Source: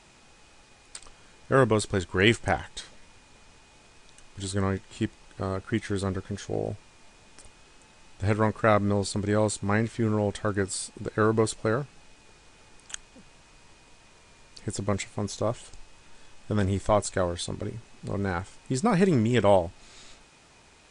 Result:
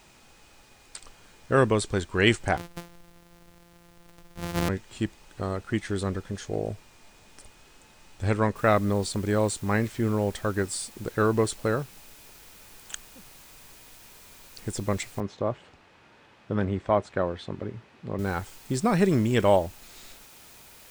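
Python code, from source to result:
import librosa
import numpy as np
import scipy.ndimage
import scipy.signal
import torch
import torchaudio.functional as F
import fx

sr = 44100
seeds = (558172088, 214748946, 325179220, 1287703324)

y = fx.sample_sort(x, sr, block=256, at=(2.57, 4.69))
y = fx.noise_floor_step(y, sr, seeds[0], at_s=8.56, before_db=-68, after_db=-52, tilt_db=0.0)
y = fx.bandpass_edges(y, sr, low_hz=100.0, high_hz=2400.0, at=(15.2, 18.19))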